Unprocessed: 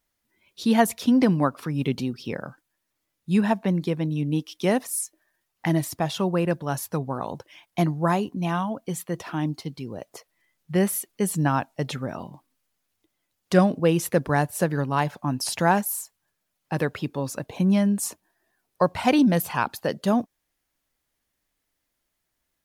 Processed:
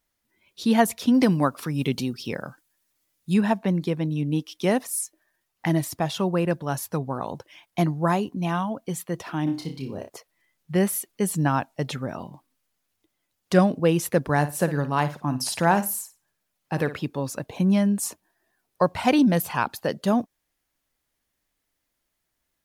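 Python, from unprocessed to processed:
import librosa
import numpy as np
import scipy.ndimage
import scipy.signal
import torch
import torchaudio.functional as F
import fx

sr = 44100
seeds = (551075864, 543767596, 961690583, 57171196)

y = fx.high_shelf(x, sr, hz=3800.0, db=8.5, at=(1.14, 3.34))
y = fx.room_flutter(y, sr, wall_m=5.1, rt60_s=0.32, at=(9.46, 10.08), fade=0.02)
y = fx.room_flutter(y, sr, wall_m=9.4, rt60_s=0.26, at=(14.33, 17.0))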